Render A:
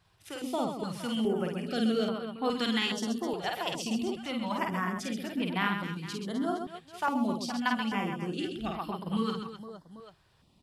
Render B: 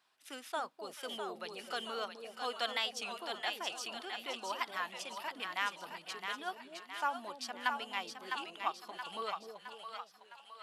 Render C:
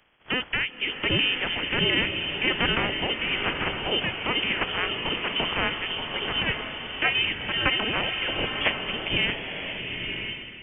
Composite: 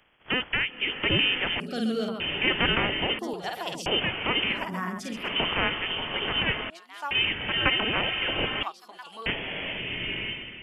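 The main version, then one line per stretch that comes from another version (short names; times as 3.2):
C
1.6–2.2 from A
3.19–3.86 from A
4.59–5.22 from A, crossfade 0.24 s
6.7–7.11 from B
8.63–9.26 from B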